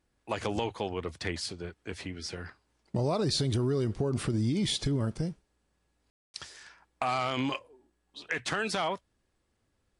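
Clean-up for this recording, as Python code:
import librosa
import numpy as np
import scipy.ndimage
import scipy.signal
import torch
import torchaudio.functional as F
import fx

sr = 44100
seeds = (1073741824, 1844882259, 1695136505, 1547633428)

y = fx.fix_ambience(x, sr, seeds[0], print_start_s=9.22, print_end_s=9.72, start_s=6.1, end_s=6.34)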